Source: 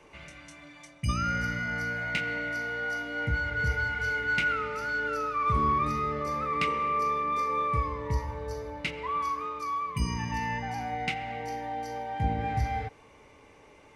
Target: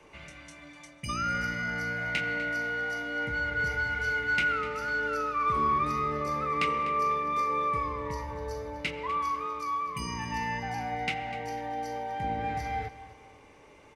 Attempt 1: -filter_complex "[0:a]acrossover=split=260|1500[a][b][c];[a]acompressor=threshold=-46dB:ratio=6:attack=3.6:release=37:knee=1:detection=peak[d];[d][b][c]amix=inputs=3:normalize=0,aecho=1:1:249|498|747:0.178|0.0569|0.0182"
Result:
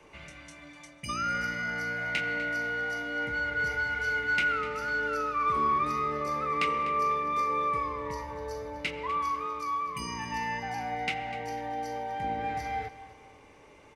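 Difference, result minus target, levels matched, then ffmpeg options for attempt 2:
compressor: peak gain reduction +6 dB
-filter_complex "[0:a]acrossover=split=260|1500[a][b][c];[a]acompressor=threshold=-39dB:ratio=6:attack=3.6:release=37:knee=1:detection=peak[d];[d][b][c]amix=inputs=3:normalize=0,aecho=1:1:249|498|747:0.178|0.0569|0.0182"

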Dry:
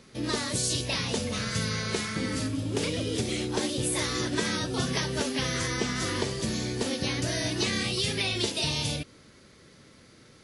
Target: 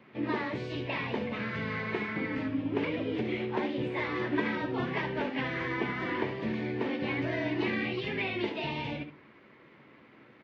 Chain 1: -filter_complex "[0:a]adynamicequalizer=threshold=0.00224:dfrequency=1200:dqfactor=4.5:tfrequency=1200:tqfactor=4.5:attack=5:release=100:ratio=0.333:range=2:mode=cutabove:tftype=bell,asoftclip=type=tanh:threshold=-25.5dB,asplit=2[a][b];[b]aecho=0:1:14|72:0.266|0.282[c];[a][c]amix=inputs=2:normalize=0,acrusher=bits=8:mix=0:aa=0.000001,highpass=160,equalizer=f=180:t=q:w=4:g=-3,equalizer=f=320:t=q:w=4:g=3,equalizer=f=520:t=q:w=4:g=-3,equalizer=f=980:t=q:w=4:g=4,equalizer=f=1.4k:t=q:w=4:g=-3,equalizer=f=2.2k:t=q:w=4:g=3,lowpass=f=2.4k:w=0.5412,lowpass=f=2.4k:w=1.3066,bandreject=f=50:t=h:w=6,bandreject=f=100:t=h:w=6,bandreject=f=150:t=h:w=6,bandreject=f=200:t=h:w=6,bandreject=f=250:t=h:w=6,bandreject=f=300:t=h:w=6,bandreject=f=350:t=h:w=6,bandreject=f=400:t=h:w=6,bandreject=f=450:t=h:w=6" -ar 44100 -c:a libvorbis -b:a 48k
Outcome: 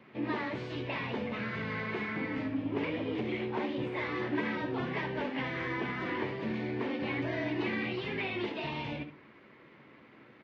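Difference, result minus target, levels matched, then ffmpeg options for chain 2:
soft clip: distortion +14 dB
-filter_complex "[0:a]adynamicequalizer=threshold=0.00224:dfrequency=1200:dqfactor=4.5:tfrequency=1200:tqfactor=4.5:attack=5:release=100:ratio=0.333:range=2:mode=cutabove:tftype=bell,asoftclip=type=tanh:threshold=-15dB,asplit=2[a][b];[b]aecho=0:1:14|72:0.266|0.282[c];[a][c]amix=inputs=2:normalize=0,acrusher=bits=8:mix=0:aa=0.000001,highpass=160,equalizer=f=180:t=q:w=4:g=-3,equalizer=f=320:t=q:w=4:g=3,equalizer=f=520:t=q:w=4:g=-3,equalizer=f=980:t=q:w=4:g=4,equalizer=f=1.4k:t=q:w=4:g=-3,equalizer=f=2.2k:t=q:w=4:g=3,lowpass=f=2.4k:w=0.5412,lowpass=f=2.4k:w=1.3066,bandreject=f=50:t=h:w=6,bandreject=f=100:t=h:w=6,bandreject=f=150:t=h:w=6,bandreject=f=200:t=h:w=6,bandreject=f=250:t=h:w=6,bandreject=f=300:t=h:w=6,bandreject=f=350:t=h:w=6,bandreject=f=400:t=h:w=6,bandreject=f=450:t=h:w=6" -ar 44100 -c:a libvorbis -b:a 48k

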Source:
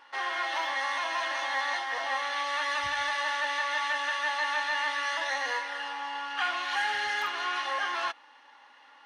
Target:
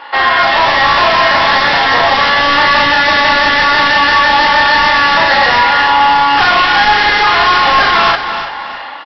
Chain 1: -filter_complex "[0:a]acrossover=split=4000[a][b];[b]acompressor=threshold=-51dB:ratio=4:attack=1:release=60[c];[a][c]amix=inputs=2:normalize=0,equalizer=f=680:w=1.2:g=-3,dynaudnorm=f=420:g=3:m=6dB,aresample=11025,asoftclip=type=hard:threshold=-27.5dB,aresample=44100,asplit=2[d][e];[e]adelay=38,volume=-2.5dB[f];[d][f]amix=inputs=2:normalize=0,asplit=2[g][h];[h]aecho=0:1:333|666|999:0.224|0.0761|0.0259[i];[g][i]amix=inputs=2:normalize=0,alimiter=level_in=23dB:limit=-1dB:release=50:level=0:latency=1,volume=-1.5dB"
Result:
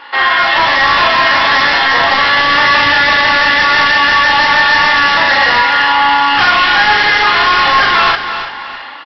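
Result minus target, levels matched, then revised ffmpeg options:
500 Hz band -3.5 dB
-filter_complex "[0:a]acrossover=split=4000[a][b];[b]acompressor=threshold=-51dB:ratio=4:attack=1:release=60[c];[a][c]amix=inputs=2:normalize=0,equalizer=f=680:w=1.2:g=4,dynaudnorm=f=420:g=3:m=6dB,aresample=11025,asoftclip=type=hard:threshold=-27.5dB,aresample=44100,asplit=2[d][e];[e]adelay=38,volume=-2.5dB[f];[d][f]amix=inputs=2:normalize=0,asplit=2[g][h];[h]aecho=0:1:333|666|999:0.224|0.0761|0.0259[i];[g][i]amix=inputs=2:normalize=0,alimiter=level_in=23dB:limit=-1dB:release=50:level=0:latency=1,volume=-1.5dB"

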